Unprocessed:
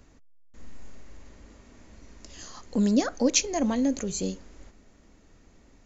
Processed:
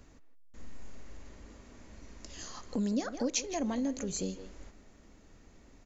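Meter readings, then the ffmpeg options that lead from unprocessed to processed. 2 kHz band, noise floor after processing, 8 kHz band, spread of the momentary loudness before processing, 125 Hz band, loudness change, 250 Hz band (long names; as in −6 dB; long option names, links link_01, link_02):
−8.0 dB, −59 dBFS, can't be measured, 20 LU, −7.0 dB, −9.0 dB, −8.0 dB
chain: -filter_complex "[0:a]asplit=2[link_01][link_02];[link_02]adelay=160,highpass=300,lowpass=3400,asoftclip=type=hard:threshold=-16.5dB,volume=-12dB[link_03];[link_01][link_03]amix=inputs=2:normalize=0,acompressor=threshold=-34dB:ratio=2,volume=-1dB"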